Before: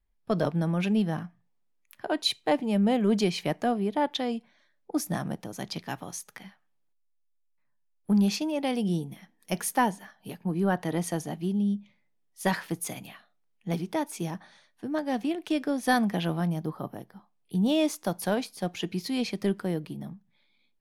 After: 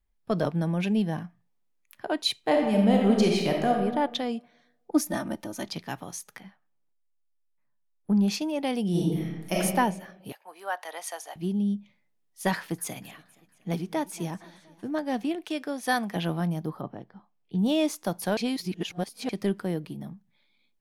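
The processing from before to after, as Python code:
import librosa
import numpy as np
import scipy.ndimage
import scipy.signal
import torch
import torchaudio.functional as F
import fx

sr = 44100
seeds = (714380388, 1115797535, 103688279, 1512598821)

y = fx.notch(x, sr, hz=1300.0, q=5.1, at=(0.64, 1.25))
y = fx.reverb_throw(y, sr, start_s=2.41, length_s=1.32, rt60_s=1.2, drr_db=0.0)
y = fx.comb(y, sr, ms=3.3, depth=0.91, at=(4.91, 5.69))
y = fx.high_shelf(y, sr, hz=2300.0, db=-9.5, at=(6.4, 8.28))
y = fx.reverb_throw(y, sr, start_s=8.9, length_s=0.69, rt60_s=1.2, drr_db=-6.0)
y = fx.highpass(y, sr, hz=650.0, slope=24, at=(10.32, 11.36))
y = fx.echo_warbled(y, sr, ms=235, feedback_pct=60, rate_hz=2.8, cents=126, wet_db=-21.5, at=(12.55, 14.91))
y = fx.low_shelf(y, sr, hz=280.0, db=-11.0, at=(15.44, 16.16))
y = fx.air_absorb(y, sr, metres=160.0, at=(16.81, 17.59))
y = fx.edit(y, sr, fx.reverse_span(start_s=18.37, length_s=0.92), tone=tone)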